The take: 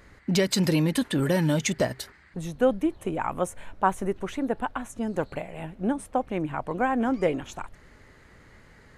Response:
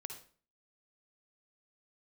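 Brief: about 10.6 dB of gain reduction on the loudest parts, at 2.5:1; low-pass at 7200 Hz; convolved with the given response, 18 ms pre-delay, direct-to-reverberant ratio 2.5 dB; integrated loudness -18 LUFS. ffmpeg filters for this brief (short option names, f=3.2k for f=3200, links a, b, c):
-filter_complex "[0:a]lowpass=7.2k,acompressor=threshold=-33dB:ratio=2.5,asplit=2[a][b];[1:a]atrim=start_sample=2205,adelay=18[c];[b][c]afir=irnorm=-1:irlink=0,volume=1dB[d];[a][d]amix=inputs=2:normalize=0,volume=15.5dB"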